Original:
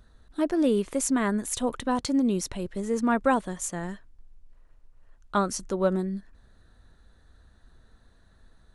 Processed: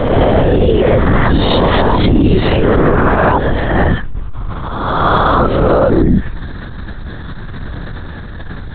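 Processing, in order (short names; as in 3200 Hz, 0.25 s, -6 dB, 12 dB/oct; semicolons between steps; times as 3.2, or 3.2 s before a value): spectral swells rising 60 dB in 1.16 s; compressor 8:1, threshold -32 dBFS, peak gain reduction 17 dB; LPC vocoder at 8 kHz whisper; transient shaper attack -11 dB, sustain +1 dB; maximiser +30 dB; gain -1 dB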